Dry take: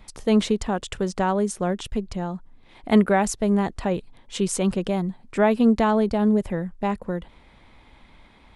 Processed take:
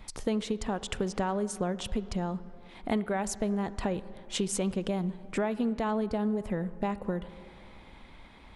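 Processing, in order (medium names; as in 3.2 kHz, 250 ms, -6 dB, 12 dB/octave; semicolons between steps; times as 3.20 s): compression, threshold -27 dBFS, peak gain reduction 15 dB; on a send: low-pass 6 kHz + reverberation RT60 2.8 s, pre-delay 33 ms, DRR 15.5 dB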